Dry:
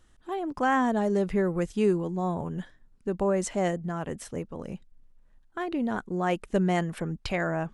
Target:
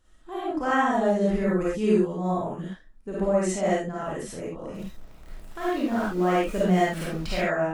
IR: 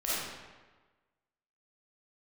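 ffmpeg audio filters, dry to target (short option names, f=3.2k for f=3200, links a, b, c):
-filter_complex "[0:a]asettb=1/sr,asplit=3[a][b][c];[a]atrim=end=4.744[d];[b]atrim=start=4.74:end=7.37,asetpts=PTS-STARTPTS,afade=t=in:d=0.004:c=qsin,afade=t=out:st=2.626:d=0.004:c=qsin,aeval=exprs='val(0)+0.5*0.0133*sgn(val(0))':c=same[e];[c]atrim=start=7.366[f];[d][e]acrossfade=d=0.004:c1=hsin:c2=qsin[g];[g][f]acrossfade=d=0.004:c1=qsin:c2=hsin[h];[1:a]atrim=start_sample=2205,atrim=end_sample=6174[i];[h][i]afir=irnorm=-1:irlink=0,volume=-3.5dB"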